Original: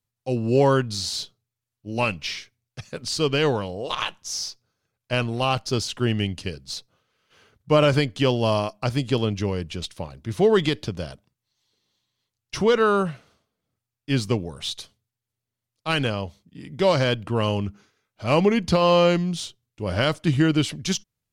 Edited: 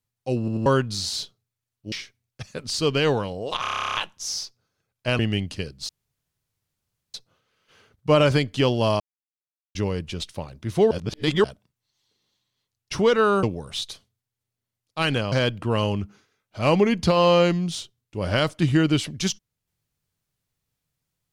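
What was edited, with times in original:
0:00.39: stutter in place 0.09 s, 3 plays
0:01.92–0:02.30: remove
0:03.99: stutter 0.03 s, 12 plays
0:05.24–0:06.06: remove
0:06.76: splice in room tone 1.25 s
0:08.62–0:09.37: silence
0:10.53–0:11.06: reverse
0:13.05–0:14.32: remove
0:16.21–0:16.97: remove

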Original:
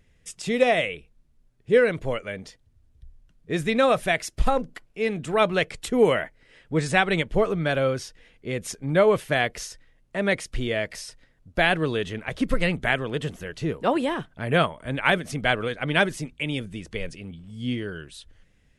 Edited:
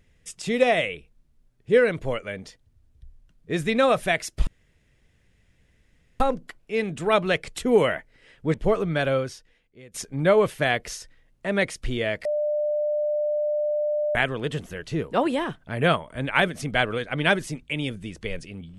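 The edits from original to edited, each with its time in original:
0:04.47: splice in room tone 1.73 s
0:06.81–0:07.24: remove
0:07.83–0:08.64: fade out quadratic, to −19 dB
0:10.95–0:12.85: beep over 597 Hz −21.5 dBFS

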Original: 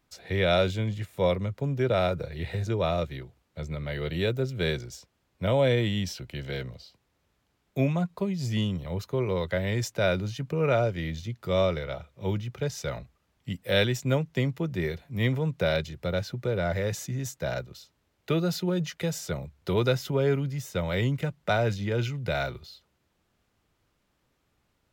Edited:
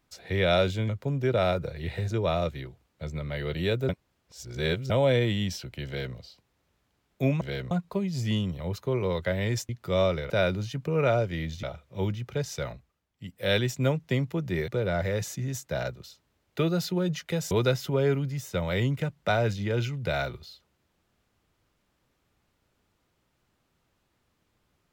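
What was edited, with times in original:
0:00.89–0:01.45: remove
0:04.45–0:05.46: reverse
0:06.42–0:06.72: duplicate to 0:07.97
0:11.28–0:11.89: move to 0:09.95
0:12.84–0:13.90: duck −11 dB, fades 0.48 s
0:14.94–0:16.39: remove
0:19.22–0:19.72: remove

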